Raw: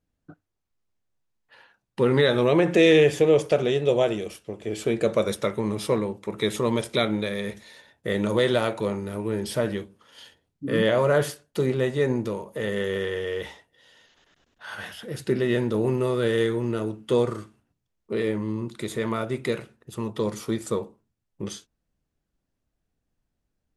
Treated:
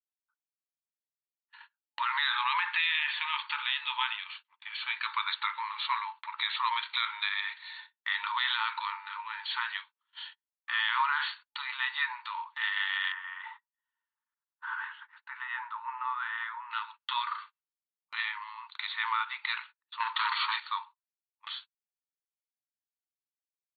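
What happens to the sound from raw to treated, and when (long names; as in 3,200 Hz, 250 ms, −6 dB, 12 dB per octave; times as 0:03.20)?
0:13.12–0:16.71: flat-topped band-pass 650 Hz, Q 0.55
0:20.00–0:20.60: leveller curve on the samples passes 3
whole clip: brick-wall band-pass 860–4,500 Hz; noise gate −52 dBFS, range −30 dB; brickwall limiter −23 dBFS; level +5 dB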